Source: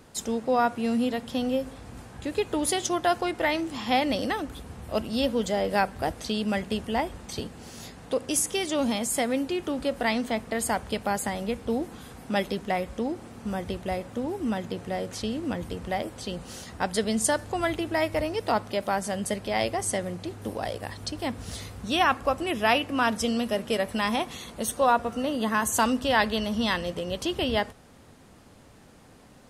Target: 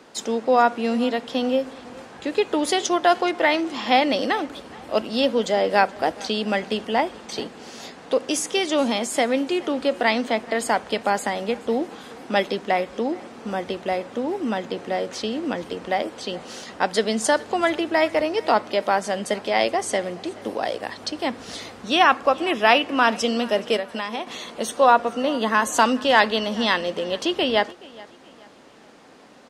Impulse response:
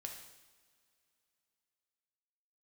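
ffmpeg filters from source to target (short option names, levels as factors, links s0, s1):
-filter_complex "[0:a]acrossover=split=220 6800:gain=0.0794 1 0.178[s0][s1][s2];[s0][s1][s2]amix=inputs=3:normalize=0,asettb=1/sr,asplit=3[s3][s4][s5];[s3]atrim=end=23.764[s6];[s4]atrim=start=23.76:end=24.27,asetpts=PTS-STARTPTS,afade=t=in:d=0.004:c=qsin,afade=t=out:st=0.506:d=0.004:c=qsin,acompressor=threshold=0.0251:ratio=5[s7];[s5]atrim=start=24.266[s8];[s6][s7]acrossfade=d=0.004:c1=hsin:c2=qsin[s9];[s9][s8]acrossfade=d=0.004:c1=qsin:c2=hsin,asplit=2[s10][s11];[s11]aecho=0:1:425|850|1275:0.0794|0.0294|0.0109[s12];[s10][s12]amix=inputs=2:normalize=0,volume=2.11"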